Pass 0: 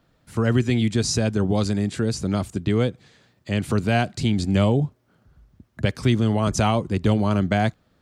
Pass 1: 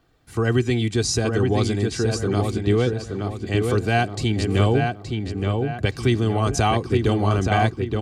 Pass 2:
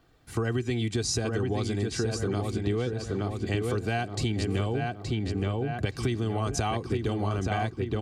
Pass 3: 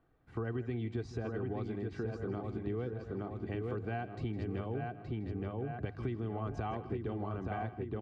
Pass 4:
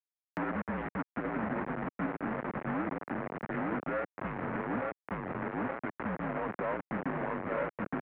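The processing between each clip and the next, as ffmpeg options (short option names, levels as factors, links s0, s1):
-filter_complex "[0:a]aecho=1:1:2.6:0.52,asplit=2[s0][s1];[s1]adelay=872,lowpass=f=3200:p=1,volume=0.631,asplit=2[s2][s3];[s3]adelay=872,lowpass=f=3200:p=1,volume=0.42,asplit=2[s4][s5];[s5]adelay=872,lowpass=f=3200:p=1,volume=0.42,asplit=2[s6][s7];[s7]adelay=872,lowpass=f=3200:p=1,volume=0.42,asplit=2[s8][s9];[s9]adelay=872,lowpass=f=3200:p=1,volume=0.42[s10];[s0][s2][s4][s6][s8][s10]amix=inputs=6:normalize=0"
-af "acompressor=threshold=0.0562:ratio=6"
-af "lowpass=1700,bandreject=f=50:t=h:w=6,bandreject=f=100:t=h:w=6,aecho=1:1:160:0.178,volume=0.376"
-af "acrusher=bits=5:mix=0:aa=0.000001,highpass=f=360:t=q:w=0.5412,highpass=f=360:t=q:w=1.307,lowpass=f=2200:t=q:w=0.5176,lowpass=f=2200:t=q:w=0.7071,lowpass=f=2200:t=q:w=1.932,afreqshift=-170,acompressor=mode=upward:threshold=0.00794:ratio=2.5,volume=1.88"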